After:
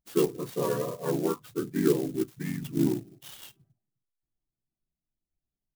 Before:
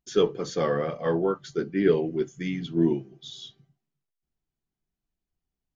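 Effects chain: loudest bins only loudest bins 32; harmoniser -3 st 0 dB; clock jitter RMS 0.058 ms; gain -6 dB

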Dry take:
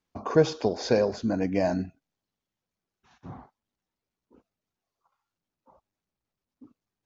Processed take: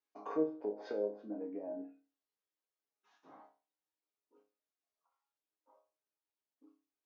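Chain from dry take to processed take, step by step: treble ducked by the level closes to 410 Hz, closed at -22 dBFS; HPF 300 Hz 24 dB/oct; resonator bank G#2 sus4, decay 0.35 s; gain +4 dB

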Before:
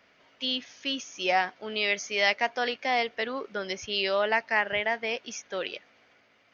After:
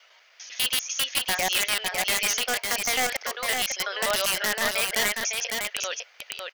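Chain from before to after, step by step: slices in reverse order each 99 ms, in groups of 4; HPF 500 Hz 24 dB/oct; tilt +3.5 dB/oct; limiter -14.5 dBFS, peak gain reduction 8.5 dB; wrapped overs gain 18 dB; on a send: echo 0.554 s -4.5 dB; on the sum: gain +2 dB

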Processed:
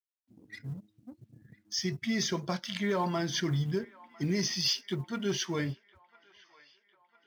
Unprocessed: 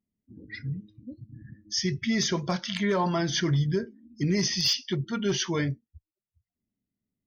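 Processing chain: G.711 law mismatch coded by A; HPF 110 Hz; band-limited delay 1.002 s, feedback 58%, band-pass 1500 Hz, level -20 dB; gain -3.5 dB

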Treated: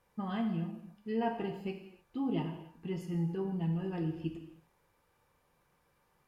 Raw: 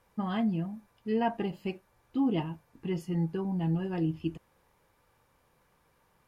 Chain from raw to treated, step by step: non-linear reverb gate 0.33 s falling, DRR 4 dB; gain -5.5 dB

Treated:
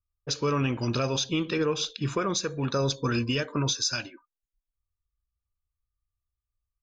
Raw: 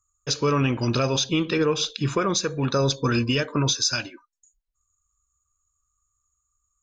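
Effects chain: low-pass opened by the level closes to 470 Hz, open at -22 dBFS; gain -4.5 dB

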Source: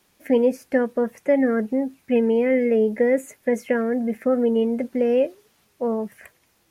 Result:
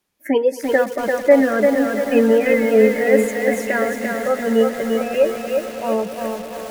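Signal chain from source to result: spectral noise reduction 19 dB; on a send: swelling echo 0.111 s, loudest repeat 5, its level -17 dB; on the sum: lo-fi delay 0.343 s, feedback 55%, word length 7-bit, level -3.5 dB; gain +7.5 dB

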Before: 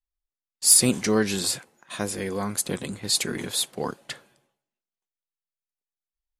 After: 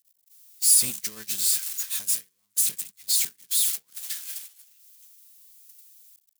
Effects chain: switching spikes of -11.5 dBFS; gate -17 dBFS, range -39 dB; passive tone stack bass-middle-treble 5-5-5

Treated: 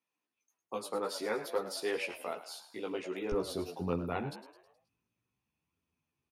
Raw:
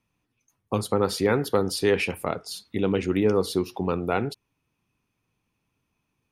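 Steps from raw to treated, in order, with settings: HPF 370 Hz 12 dB/oct, from 3.32 s 51 Hz; frequency-shifting echo 0.106 s, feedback 49%, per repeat +76 Hz, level -13 dB; chorus voices 2, 0.51 Hz, delay 15 ms, depth 3.3 ms; gain -7 dB

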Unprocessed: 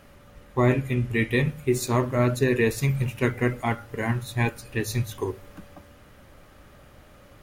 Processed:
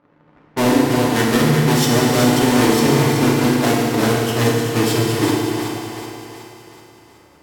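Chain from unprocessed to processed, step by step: half-waves squared off; HPF 230 Hz 12 dB/oct; sample leveller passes 3; formant shift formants -4 st; low-pass opened by the level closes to 1300 Hz, open at -25.5 dBFS; on a send: split-band echo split 400 Hz, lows 91 ms, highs 0.374 s, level -7 dB; on the sum: FDN reverb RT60 2.4 s, low-frequency decay 1.3×, high-frequency decay 0.95×, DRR -2 dB; gain -5.5 dB

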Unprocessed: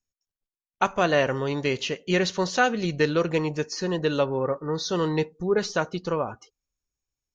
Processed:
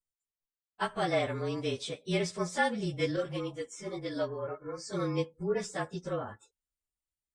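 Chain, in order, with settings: inharmonic rescaling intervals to 109%; 3.16–4.93 ensemble effect; gain -5.5 dB

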